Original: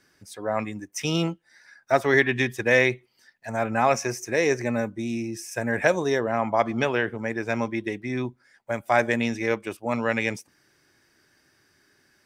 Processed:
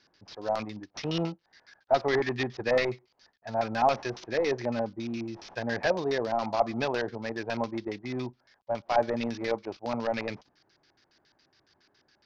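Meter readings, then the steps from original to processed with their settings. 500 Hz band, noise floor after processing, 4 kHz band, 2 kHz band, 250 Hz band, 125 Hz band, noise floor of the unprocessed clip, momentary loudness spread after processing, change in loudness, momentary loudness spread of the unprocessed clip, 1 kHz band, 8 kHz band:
−4.0 dB, −72 dBFS, −3.5 dB, −10.0 dB, −6.0 dB, −6.5 dB, −65 dBFS, 11 LU, −5.5 dB, 12 LU, −3.0 dB, −13.5 dB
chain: variable-slope delta modulation 32 kbit/s
auto-filter low-pass square 7.2 Hz 820–4,800 Hz
level −5.5 dB

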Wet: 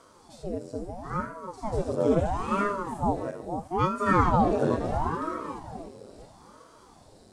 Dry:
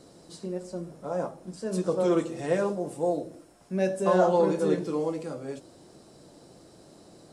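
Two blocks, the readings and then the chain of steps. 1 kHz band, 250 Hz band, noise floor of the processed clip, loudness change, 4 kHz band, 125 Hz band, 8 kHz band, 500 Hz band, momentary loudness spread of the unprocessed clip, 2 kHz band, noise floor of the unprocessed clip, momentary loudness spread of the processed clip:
+6.0 dB, 0.0 dB, −55 dBFS, 0.0 dB, −1.5 dB, +4.5 dB, −4.5 dB, −3.0 dB, 15 LU, +4.0 dB, −54 dBFS, 15 LU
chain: feedback delay that plays each chunk backwards 368 ms, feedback 40%, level −6.5 dB
harmonic and percussive parts rebalanced percussive −17 dB
ring modulator whose carrier an LFO sweeps 430 Hz, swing 90%, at 0.75 Hz
level +4 dB

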